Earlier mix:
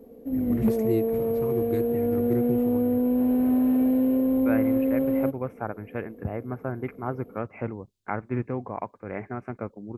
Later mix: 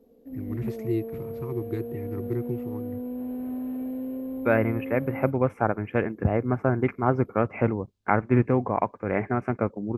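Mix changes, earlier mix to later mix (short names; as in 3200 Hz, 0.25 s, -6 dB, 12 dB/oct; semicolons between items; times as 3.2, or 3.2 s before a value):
first voice: add air absorption 92 m; second voice +8.0 dB; background -10.5 dB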